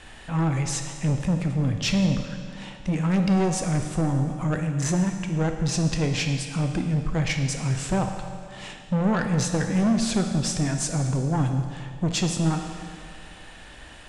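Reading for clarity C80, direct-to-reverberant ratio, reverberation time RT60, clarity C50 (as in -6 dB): 7.5 dB, 4.5 dB, 2.1 s, 6.0 dB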